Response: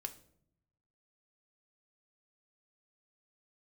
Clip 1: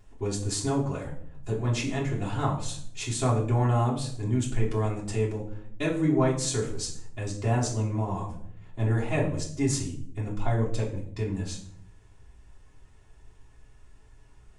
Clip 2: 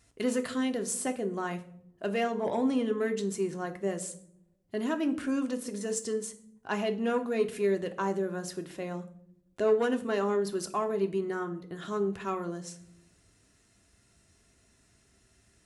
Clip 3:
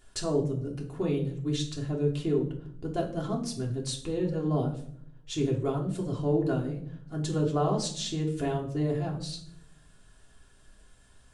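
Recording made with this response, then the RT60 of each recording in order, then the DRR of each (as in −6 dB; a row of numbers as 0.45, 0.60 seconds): 2; 0.65, 0.65, 0.65 seconds; −8.5, 5.5, −2.0 decibels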